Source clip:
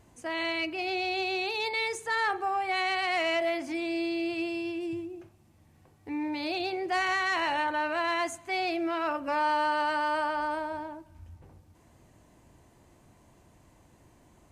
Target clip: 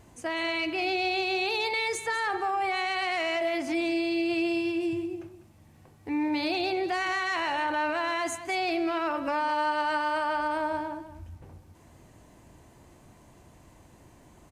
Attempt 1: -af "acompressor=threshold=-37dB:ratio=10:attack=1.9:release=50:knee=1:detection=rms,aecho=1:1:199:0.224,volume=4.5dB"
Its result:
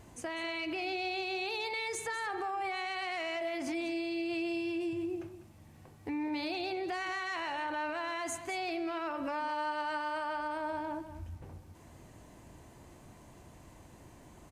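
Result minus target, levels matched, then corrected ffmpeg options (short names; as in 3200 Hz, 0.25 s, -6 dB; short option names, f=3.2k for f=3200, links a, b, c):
compressor: peak gain reduction +7.5 dB
-af "acompressor=threshold=-28.5dB:ratio=10:attack=1.9:release=50:knee=1:detection=rms,aecho=1:1:199:0.224,volume=4.5dB"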